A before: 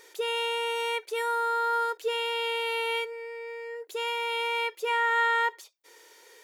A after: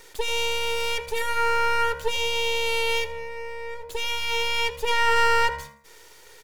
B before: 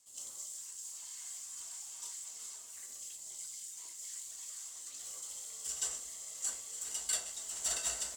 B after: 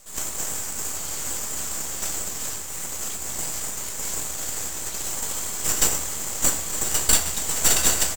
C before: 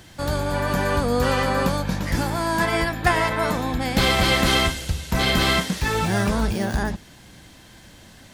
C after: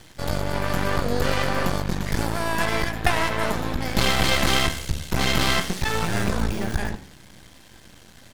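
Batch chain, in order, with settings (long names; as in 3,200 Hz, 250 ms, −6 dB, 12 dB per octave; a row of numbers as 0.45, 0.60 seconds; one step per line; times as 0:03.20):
half-wave rectification
hum removal 93.67 Hz, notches 29
echo with shifted repeats 82 ms, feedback 34%, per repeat +71 Hz, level −19 dB
loudness normalisation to −24 LKFS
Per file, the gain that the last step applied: +8.5, +20.5, +2.5 decibels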